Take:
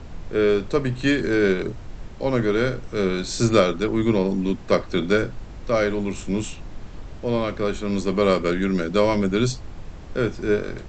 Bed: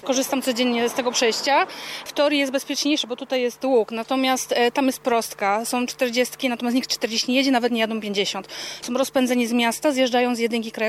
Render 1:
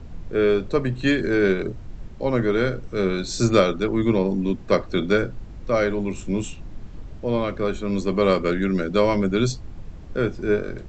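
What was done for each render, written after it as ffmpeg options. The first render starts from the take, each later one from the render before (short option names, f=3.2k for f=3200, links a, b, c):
-af "afftdn=nr=7:nf=-38"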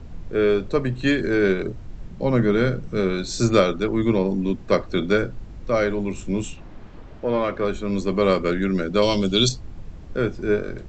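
-filter_complex "[0:a]asettb=1/sr,asplit=3[a][b][c];[a]atrim=end=2.084[d];[b]atrim=start=2.08:end=3,asetpts=PTS-STARTPTS,afade=t=in:d=0.004:c=qsin,afade=t=out:st=0.916:d=0.004:c=qsin,equalizer=f=170:w=2.1:g=11[e];[c]atrim=start=2.996[f];[d][e]acrossfade=d=0.004:c1=hsin:c2=qsin[g];[g][f]acrossfade=d=0.004:c1=qsin:c2=hsin,asettb=1/sr,asplit=3[h][i][j];[h]atrim=end=6.574[k];[i]atrim=start=6.57:end=7.65,asetpts=PTS-STARTPTS,afade=t=in:d=0.004:c=qsin,afade=t=out:st=1.076:d=0.004:c=qsin,asplit=2[l][m];[m]highpass=f=720:p=1,volume=13dB,asoftclip=type=tanh:threshold=-10.5dB[n];[l][n]amix=inputs=2:normalize=0,lowpass=f=1.6k:p=1,volume=-6dB[o];[j]atrim=start=7.646[p];[k][o]acrossfade=d=0.004:c1=hsin:c2=qsin[q];[q][p]acrossfade=d=0.004:c1=qsin:c2=hsin,asettb=1/sr,asplit=3[r][s][t];[r]atrim=end=9.024[u];[s]atrim=start=9.02:end=9.49,asetpts=PTS-STARTPTS,afade=t=in:d=0.004:c=qsin,afade=t=out:st=0.466:d=0.004:c=qsin,highshelf=f=2.5k:t=q:w=3:g=9[v];[t]atrim=start=9.486[w];[u][v]acrossfade=d=0.004:c1=hsin:c2=qsin[x];[x][w]acrossfade=d=0.004:c1=qsin:c2=hsin"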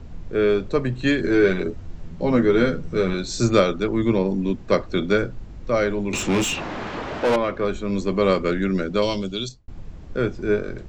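-filter_complex "[0:a]asettb=1/sr,asplit=3[a][b][c];[a]atrim=end=1.234[d];[b]atrim=start=1.23:end=3.14,asetpts=PTS-STARTPTS,afade=t=in:d=0.004:c=qsin,afade=t=out:st=1.906:d=0.004:c=qsin,asplit=2[e][f];[f]adelay=12,volume=-4dB[g];[e][g]amix=inputs=2:normalize=0,atrim=end_sample=84231[h];[c]atrim=start=3.136[i];[d][h]acrossfade=d=0.004:c1=hsin:c2=qsin[j];[j][i]acrossfade=d=0.004:c1=qsin:c2=hsin,asettb=1/sr,asplit=3[k][l][m];[k]atrim=end=6.134[n];[l]atrim=start=6.13:end=7.36,asetpts=PTS-STARTPTS,afade=t=in:d=0.004:c=qsin,afade=t=out:st=1.226:d=0.004:c=qsin,asplit=2[o][p];[p]highpass=f=720:p=1,volume=29dB,asoftclip=type=tanh:threshold=-12.5dB[q];[o][q]amix=inputs=2:normalize=0,lowpass=f=4k:p=1,volume=-6dB[r];[m]atrim=start=7.356[s];[n][r]acrossfade=d=0.004:c1=hsin:c2=qsin[t];[t][s]acrossfade=d=0.004:c1=qsin:c2=hsin,asplit=2[u][v];[u]atrim=end=9.68,asetpts=PTS-STARTPTS,afade=t=out:st=8.82:d=0.86[w];[v]atrim=start=9.68,asetpts=PTS-STARTPTS,afade=t=in:d=0.004:c=hsin[x];[w][x]concat=n=2:v=0:a=1"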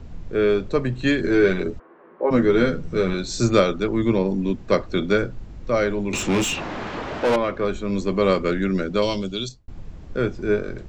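-filter_complex "[0:a]asplit=3[a][b][c];[a]afade=t=out:st=1.78:d=0.02[d];[b]highpass=f=340:w=0.5412,highpass=f=340:w=1.3066,equalizer=f=360:t=q:w=4:g=5,equalizer=f=500:t=q:w=4:g=4,equalizer=f=1.1k:t=q:w=4:g=10,equalizer=f=1.6k:t=q:w=4:g=4,lowpass=f=2k:w=0.5412,lowpass=f=2k:w=1.3066,afade=t=in:st=1.78:d=0.02,afade=t=out:st=2.3:d=0.02[e];[c]afade=t=in:st=2.3:d=0.02[f];[d][e][f]amix=inputs=3:normalize=0"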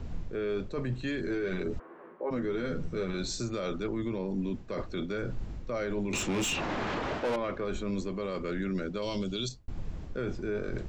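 -af "areverse,acompressor=threshold=-25dB:ratio=12,areverse,alimiter=level_in=0.5dB:limit=-24dB:level=0:latency=1:release=41,volume=-0.5dB"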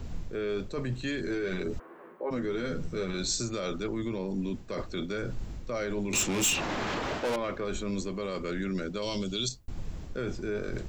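-af "crystalizer=i=2:c=0"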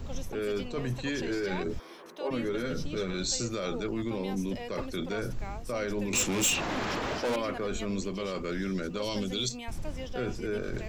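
-filter_complex "[1:a]volume=-22dB[a];[0:a][a]amix=inputs=2:normalize=0"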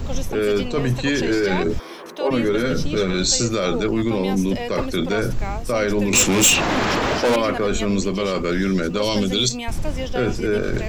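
-af "volume=12dB"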